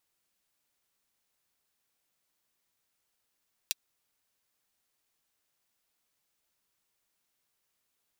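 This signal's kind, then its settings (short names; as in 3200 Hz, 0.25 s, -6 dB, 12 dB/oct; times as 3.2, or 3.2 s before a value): closed hi-hat, high-pass 3200 Hz, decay 0.03 s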